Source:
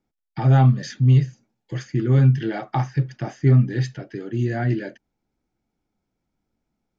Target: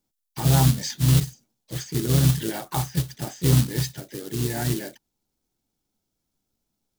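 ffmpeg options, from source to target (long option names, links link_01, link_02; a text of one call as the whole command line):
ffmpeg -i in.wav -filter_complex "[0:a]acrusher=bits=4:mode=log:mix=0:aa=0.000001,asplit=4[link_01][link_02][link_03][link_04];[link_02]asetrate=22050,aresample=44100,atempo=2,volume=-14dB[link_05];[link_03]asetrate=52444,aresample=44100,atempo=0.840896,volume=-11dB[link_06];[link_04]asetrate=55563,aresample=44100,atempo=0.793701,volume=-12dB[link_07];[link_01][link_05][link_06][link_07]amix=inputs=4:normalize=0,aexciter=amount=2.2:drive=8.5:freq=3200,volume=-4.5dB" out.wav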